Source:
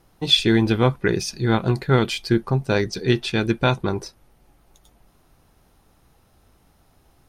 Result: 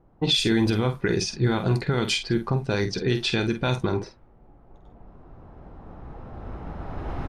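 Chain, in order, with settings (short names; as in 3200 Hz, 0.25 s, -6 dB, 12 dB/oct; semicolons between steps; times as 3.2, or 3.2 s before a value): recorder AGC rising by 8.2 dB/s; low-pass opened by the level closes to 880 Hz, open at -14.5 dBFS; dynamic EQ 7200 Hz, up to +5 dB, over -40 dBFS, Q 0.78; limiter -13 dBFS, peak gain reduction 10.5 dB; doubler 48 ms -8.5 dB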